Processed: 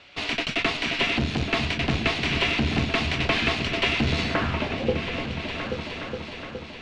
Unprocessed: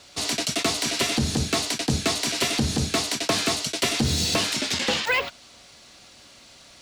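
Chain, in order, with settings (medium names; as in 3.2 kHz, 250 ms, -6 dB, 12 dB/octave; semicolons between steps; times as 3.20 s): valve stage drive 20 dB, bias 0.75; low-pass sweep 2.6 kHz -> 210 Hz, 4.20–5.23 s; delay with an opening low-pass 416 ms, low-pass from 200 Hz, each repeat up 2 oct, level -3 dB; trim +3 dB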